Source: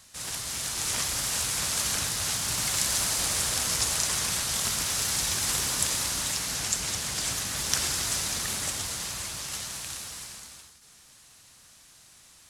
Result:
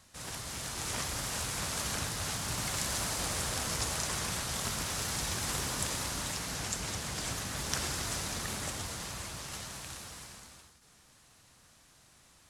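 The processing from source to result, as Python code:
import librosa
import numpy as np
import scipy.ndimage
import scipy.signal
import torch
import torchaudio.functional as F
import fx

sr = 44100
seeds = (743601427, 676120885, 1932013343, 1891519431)

y = fx.high_shelf(x, sr, hz=2000.0, db=-9.5)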